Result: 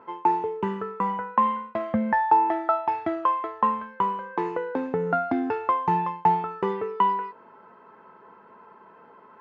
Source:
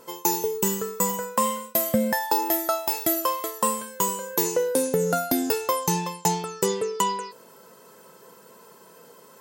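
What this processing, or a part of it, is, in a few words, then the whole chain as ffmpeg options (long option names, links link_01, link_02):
bass cabinet: -af "highpass=83,equalizer=frequency=95:width_type=q:width=4:gain=5,equalizer=frequency=150:width_type=q:width=4:gain=-8,equalizer=frequency=520:width_type=q:width=4:gain=-9,equalizer=frequency=840:width_type=q:width=4:gain=7,equalizer=frequency=1200:width_type=q:width=4:gain=5,lowpass=frequency=2200:width=0.5412,lowpass=frequency=2200:width=1.3066"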